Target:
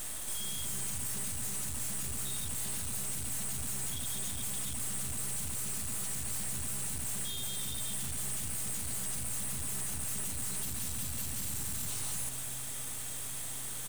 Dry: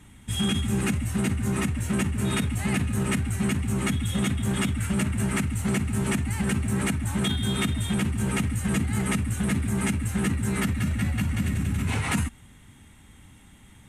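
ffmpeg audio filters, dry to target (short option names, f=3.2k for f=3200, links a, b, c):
-filter_complex "[0:a]aexciter=amount=15.2:drive=4.1:freq=3.3k,alimiter=limit=-21.5dB:level=0:latency=1,asoftclip=type=tanh:threshold=-32dB,highshelf=f=10k:g=7.5,aeval=exprs='max(val(0),0)':c=same,asplit=4[a][b][c][d];[b]adelay=309,afreqshift=-130,volume=-12dB[e];[c]adelay=618,afreqshift=-260,volume=-21.9dB[f];[d]adelay=927,afreqshift=-390,volume=-31.8dB[g];[a][e][f][g]amix=inputs=4:normalize=0"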